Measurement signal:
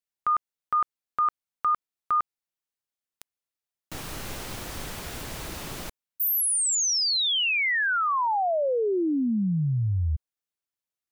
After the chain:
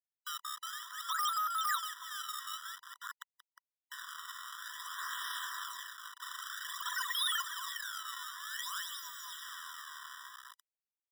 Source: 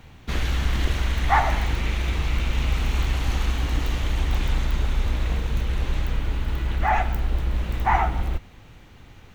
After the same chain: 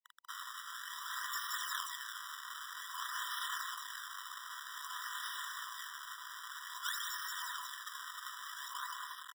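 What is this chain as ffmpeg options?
-filter_complex "[0:a]lowshelf=f=420:t=q:w=3:g=-8.5,aecho=1:1:5:0.42,asplit=8[a][b][c][d][e][f][g][h];[b]adelay=181,afreqshift=39,volume=-4dB[i];[c]adelay=362,afreqshift=78,volume=-9.5dB[j];[d]adelay=543,afreqshift=117,volume=-15dB[k];[e]adelay=724,afreqshift=156,volume=-20.5dB[l];[f]adelay=905,afreqshift=195,volume=-26.1dB[m];[g]adelay=1086,afreqshift=234,volume=-31.6dB[n];[h]adelay=1267,afreqshift=273,volume=-37.1dB[o];[a][i][j][k][l][m][n][o]amix=inputs=8:normalize=0,areverse,acompressor=threshold=-29dB:ratio=8:attack=4.1:release=73:knee=6:detection=rms,areverse,acrusher=samples=30:mix=1:aa=0.000001:lfo=1:lforange=48:lforate=0.52,bandreject=f=50:t=h:w=6,bandreject=f=100:t=h:w=6,bandreject=f=150:t=h:w=6,bandreject=f=200:t=h:w=6,bandreject=f=250:t=h:w=6,bandreject=f=300:t=h:w=6,bandreject=f=350:t=h:w=6,bandreject=f=400:t=h:w=6,bandreject=f=450:t=h:w=6,bandreject=f=500:t=h:w=6,acrusher=bits=6:mix=0:aa=0.000001,acrossover=split=120|1500[p][q][r];[q]acompressor=threshold=-41dB:ratio=6:release=73:knee=2.83:detection=peak[s];[p][s][r]amix=inputs=3:normalize=0,afftfilt=real='re*eq(mod(floor(b*sr/1024/990),2),1)':imag='im*eq(mod(floor(b*sr/1024/990),2),1)':win_size=1024:overlap=0.75,volume=1.5dB"

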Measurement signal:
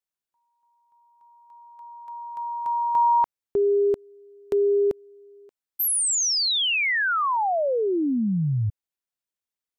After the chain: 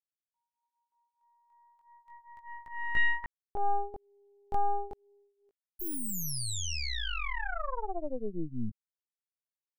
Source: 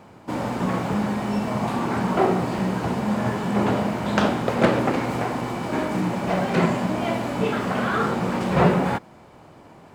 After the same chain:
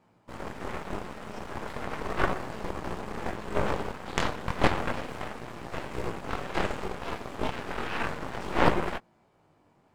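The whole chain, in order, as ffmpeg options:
-af "flanger=delay=17:depth=5.4:speed=0.34,aeval=exprs='0.447*(cos(1*acos(clip(val(0)/0.447,-1,1)))-cos(1*PI/2))+0.178*(cos(3*acos(clip(val(0)/0.447,-1,1)))-cos(3*PI/2))+0.141*(cos(4*acos(clip(val(0)/0.447,-1,1)))-cos(4*PI/2))':c=same"

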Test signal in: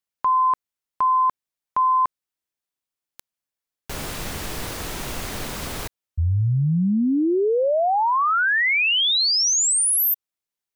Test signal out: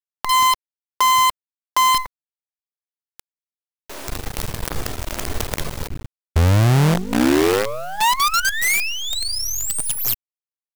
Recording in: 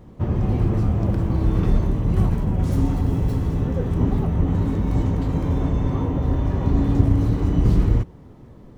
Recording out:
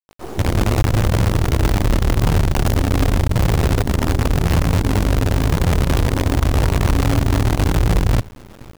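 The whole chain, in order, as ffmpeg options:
-filter_complex "[0:a]tiltshelf=f=700:g=4.5,acrossover=split=300[a][b];[a]adelay=180[c];[c][b]amix=inputs=2:normalize=0,acompressor=threshold=-20dB:ratio=8:attack=17:release=62:knee=6:detection=rms,flanger=delay=1.8:depth=1.5:regen=-39:speed=0.88:shape=triangular,acrusher=bits=5:dc=4:mix=0:aa=0.000001,volume=8.5dB"

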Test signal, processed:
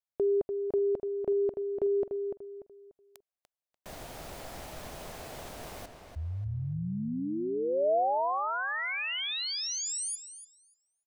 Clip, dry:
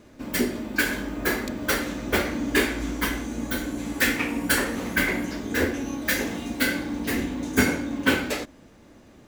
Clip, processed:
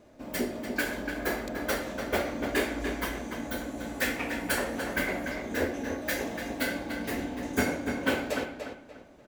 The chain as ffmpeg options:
-filter_complex "[0:a]equalizer=f=650:t=o:w=0.81:g=9.5,asplit=2[a][b];[b]adelay=293,lowpass=f=4.4k:p=1,volume=-6.5dB,asplit=2[c][d];[d]adelay=293,lowpass=f=4.4k:p=1,volume=0.31,asplit=2[e][f];[f]adelay=293,lowpass=f=4.4k:p=1,volume=0.31,asplit=2[g][h];[h]adelay=293,lowpass=f=4.4k:p=1,volume=0.31[i];[a][c][e][g][i]amix=inputs=5:normalize=0,volume=-8dB"

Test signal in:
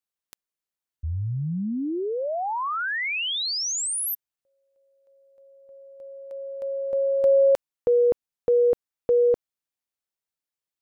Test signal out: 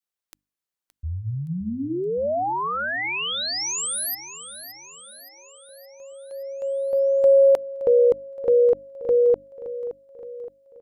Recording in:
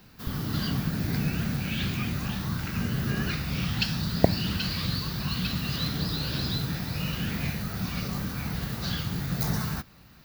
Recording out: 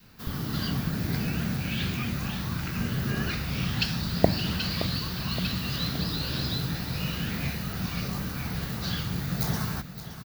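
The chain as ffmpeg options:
-filter_complex "[0:a]bandreject=f=50:t=h:w=6,bandreject=f=100:t=h:w=6,bandreject=f=150:t=h:w=6,bandreject=f=200:t=h:w=6,bandreject=f=250:t=h:w=6,bandreject=f=300:t=h:w=6,adynamicequalizer=threshold=0.0158:dfrequency=630:dqfactor=1.2:tfrequency=630:tqfactor=1.2:attack=5:release=100:ratio=0.375:range=2:mode=boostabove:tftype=bell,asplit=2[a][b];[b]aecho=0:1:570|1140|1710|2280|2850|3420:0.224|0.121|0.0653|0.0353|0.019|0.0103[c];[a][c]amix=inputs=2:normalize=0"

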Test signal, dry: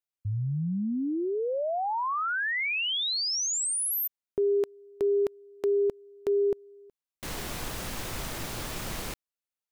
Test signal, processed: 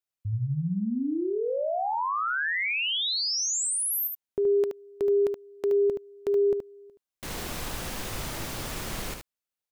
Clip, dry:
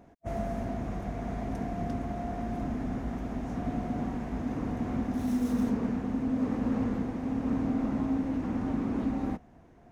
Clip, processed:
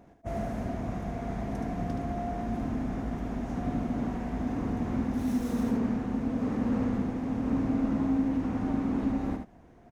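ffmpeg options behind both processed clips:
-af "aecho=1:1:74:0.531"

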